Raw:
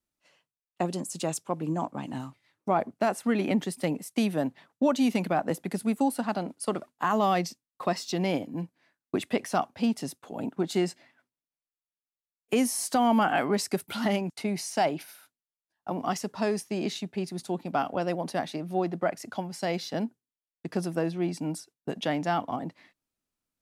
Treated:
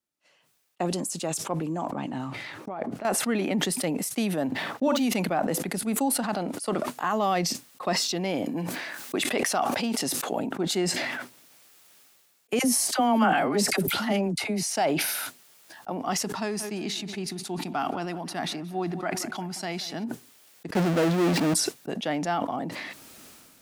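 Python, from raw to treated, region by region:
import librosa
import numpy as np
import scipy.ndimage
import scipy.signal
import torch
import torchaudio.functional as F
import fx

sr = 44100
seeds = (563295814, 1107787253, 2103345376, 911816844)

y = fx.chain(x, sr, fx.lowpass(hz=3000.0, slope=6),
    fx.over_compress(threshold_db=-31.0, ratio=-1.0), at=(1.9, 3.05))
y = fx.chain(y, sr, fx.median_filter(points=5),
    fx.doubler(ms=50.0, db=-9), at=(4.47, 5.03))
y = fx.chain(y, sr, fx.low_shelf(hz=250.0, db=-8.5),
    fx.env_flatten(amount_pct=70), at=(8.46, 10.39))
y = fx.chain(y, sr, fx.low_shelf(hz=280.0, db=4.5),
    fx.dispersion(late='lows', ms=55.0, hz=760.0), at=(12.59, 14.63))
y = fx.chain(y, sr, fx.peak_eq(hz=530.0, db=-14.5, octaves=0.37),
    fx.echo_feedback(ms=180, feedback_pct=55, wet_db=-20.0), at=(16.25, 20.04))
y = fx.chain(y, sr, fx.lowpass(hz=3400.0, slope=24),
    fx.power_curve(exponent=0.35), at=(20.75, 21.54))
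y = fx.highpass(y, sr, hz=190.0, slope=6)
y = fx.notch(y, sr, hz=1000.0, q=21.0)
y = fx.sustainer(y, sr, db_per_s=27.0)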